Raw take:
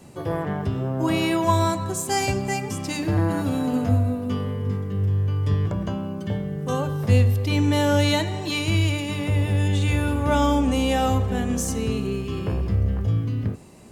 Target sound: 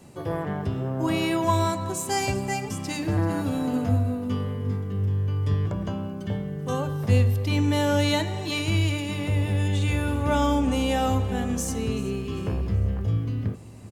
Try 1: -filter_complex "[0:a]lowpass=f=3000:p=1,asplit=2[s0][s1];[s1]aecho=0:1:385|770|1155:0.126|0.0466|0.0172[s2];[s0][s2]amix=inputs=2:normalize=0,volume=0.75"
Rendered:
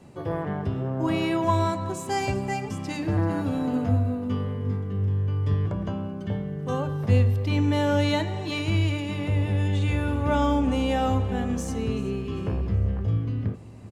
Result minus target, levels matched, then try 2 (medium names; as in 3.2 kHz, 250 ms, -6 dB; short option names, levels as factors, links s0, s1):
4 kHz band -3.0 dB
-filter_complex "[0:a]asplit=2[s0][s1];[s1]aecho=0:1:385|770|1155:0.126|0.0466|0.0172[s2];[s0][s2]amix=inputs=2:normalize=0,volume=0.75"